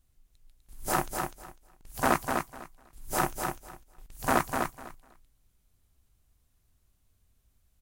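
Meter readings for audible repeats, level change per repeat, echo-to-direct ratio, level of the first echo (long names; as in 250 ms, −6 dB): 2, −15.5 dB, −5.0 dB, −5.0 dB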